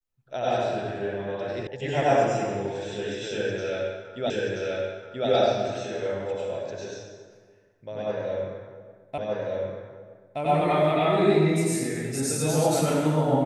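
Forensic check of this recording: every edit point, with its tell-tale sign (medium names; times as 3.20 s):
1.67 s: sound stops dead
4.30 s: repeat of the last 0.98 s
9.18 s: repeat of the last 1.22 s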